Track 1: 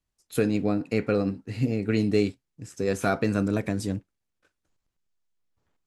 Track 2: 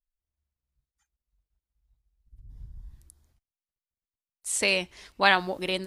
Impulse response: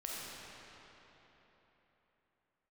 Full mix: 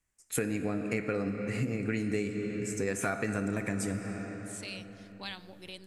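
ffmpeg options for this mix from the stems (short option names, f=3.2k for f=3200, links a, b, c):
-filter_complex "[0:a]equalizer=f=2k:t=o:w=1:g=10,equalizer=f=4k:t=o:w=1:g=-8,equalizer=f=8k:t=o:w=1:g=11,volume=-2.5dB,asplit=3[a][b][c];[b]volume=-6.5dB[d];[1:a]acrossover=split=180|3000[e][f][g];[f]acompressor=threshold=-39dB:ratio=2.5[h];[e][h][g]amix=inputs=3:normalize=0,volume=-12.5dB,asplit=2[i][j];[j]volume=-20dB[k];[c]apad=whole_len=258740[l];[i][l]sidechaincompress=threshold=-39dB:ratio=8:attack=16:release=768[m];[2:a]atrim=start_sample=2205[n];[d][k]amix=inputs=2:normalize=0[o];[o][n]afir=irnorm=-1:irlink=0[p];[a][m][p]amix=inputs=3:normalize=0,acompressor=threshold=-29dB:ratio=4"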